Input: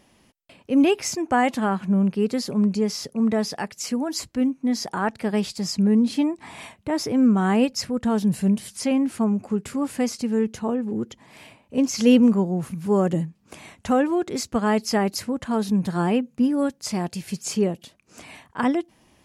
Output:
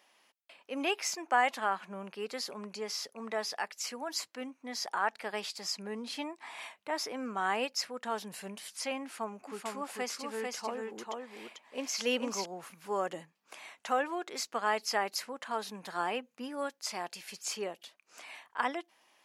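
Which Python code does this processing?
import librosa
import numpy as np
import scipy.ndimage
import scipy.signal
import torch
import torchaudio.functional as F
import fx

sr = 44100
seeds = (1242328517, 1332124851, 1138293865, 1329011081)

y = fx.echo_single(x, sr, ms=444, db=-3.0, at=(9.47, 12.44), fade=0.02)
y = scipy.signal.sosfilt(scipy.signal.butter(2, 780.0, 'highpass', fs=sr, output='sos'), y)
y = fx.peak_eq(y, sr, hz=8900.0, db=-5.5, octaves=1.2)
y = y * 10.0 ** (-3.0 / 20.0)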